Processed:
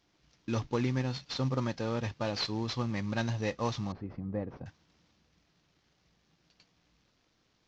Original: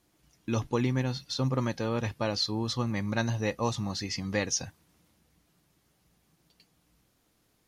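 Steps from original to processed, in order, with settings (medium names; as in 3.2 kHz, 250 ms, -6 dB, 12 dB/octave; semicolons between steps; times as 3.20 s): CVSD coder 32 kbps; 3.92–4.66 s: Bessel low-pass 550 Hz, order 2; trim -2.5 dB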